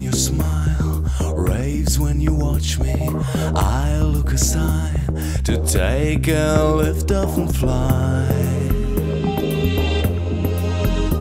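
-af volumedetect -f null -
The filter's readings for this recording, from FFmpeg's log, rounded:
mean_volume: -17.9 dB
max_volume: -4.4 dB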